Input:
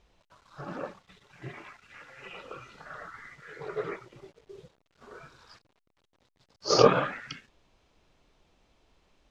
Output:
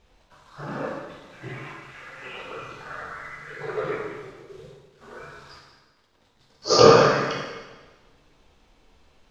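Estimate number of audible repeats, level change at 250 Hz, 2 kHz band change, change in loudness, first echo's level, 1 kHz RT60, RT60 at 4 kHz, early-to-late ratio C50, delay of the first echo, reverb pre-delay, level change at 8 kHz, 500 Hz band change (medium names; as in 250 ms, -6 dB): no echo, +7.0 dB, +8.5 dB, +7.5 dB, no echo, 1.3 s, 1.2 s, 1.5 dB, no echo, 5 ms, no reading, +8.0 dB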